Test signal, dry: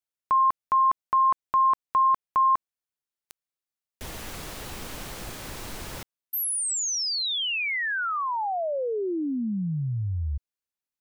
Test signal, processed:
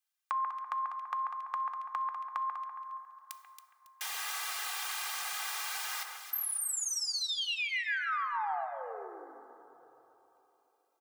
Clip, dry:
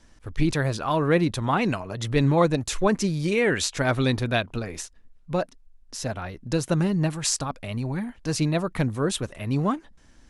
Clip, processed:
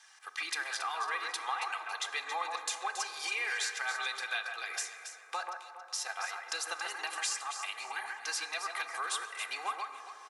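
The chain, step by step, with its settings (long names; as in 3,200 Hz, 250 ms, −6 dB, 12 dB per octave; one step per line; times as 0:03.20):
high-pass filter 930 Hz 24 dB per octave
comb filter 2.5 ms, depth 91%
downward compressor 5 to 1, threshold −37 dBFS
on a send: delay that swaps between a low-pass and a high-pass 138 ms, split 2,200 Hz, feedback 55%, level −4 dB
on the sum: dense smooth reverb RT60 3.6 s, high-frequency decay 0.25×, pre-delay 0 ms, DRR 9 dB
level +2.5 dB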